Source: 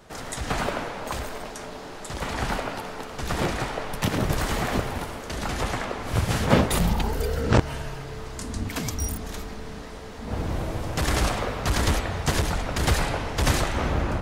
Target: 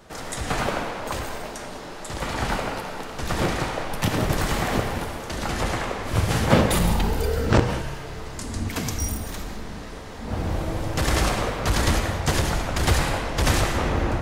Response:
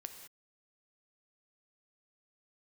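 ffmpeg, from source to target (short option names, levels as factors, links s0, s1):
-filter_complex "[1:a]atrim=start_sample=2205[s0];[0:a][s0]afir=irnorm=-1:irlink=0,volume=2"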